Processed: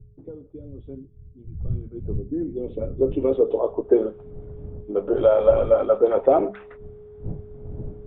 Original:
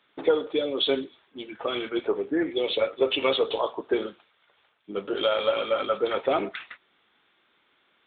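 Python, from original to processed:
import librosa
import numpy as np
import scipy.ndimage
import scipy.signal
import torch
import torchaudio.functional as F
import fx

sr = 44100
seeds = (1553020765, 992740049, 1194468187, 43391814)

y = fx.dmg_wind(x, sr, seeds[0], corner_hz=100.0, level_db=-40.0)
y = fx.high_shelf(y, sr, hz=2500.0, db=7.5)
y = fx.hum_notches(y, sr, base_hz=50, count=4)
y = y + 10.0 ** (-49.0 / 20.0) * np.sin(2.0 * np.pi * 420.0 * np.arange(len(y)) / sr)
y = fx.filter_sweep_lowpass(y, sr, from_hz=120.0, to_hz=660.0, start_s=1.61, end_s=4.22, q=1.4)
y = y * 10.0 ** (5.0 / 20.0)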